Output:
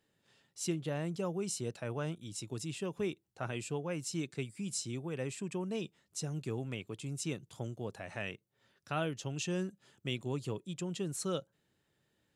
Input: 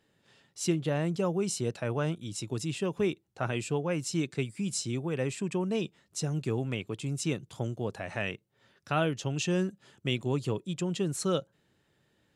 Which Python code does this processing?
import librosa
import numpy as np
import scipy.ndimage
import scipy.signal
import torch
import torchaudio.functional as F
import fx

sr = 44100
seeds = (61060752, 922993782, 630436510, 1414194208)

y = fx.high_shelf(x, sr, hz=6500.0, db=5.5)
y = F.gain(torch.from_numpy(y), -7.0).numpy()